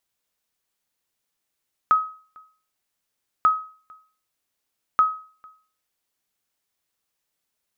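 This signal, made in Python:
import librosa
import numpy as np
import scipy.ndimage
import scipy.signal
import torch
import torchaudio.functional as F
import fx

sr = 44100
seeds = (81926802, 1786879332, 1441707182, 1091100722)

y = fx.sonar_ping(sr, hz=1270.0, decay_s=0.42, every_s=1.54, pings=3, echo_s=0.45, echo_db=-29.0, level_db=-10.0)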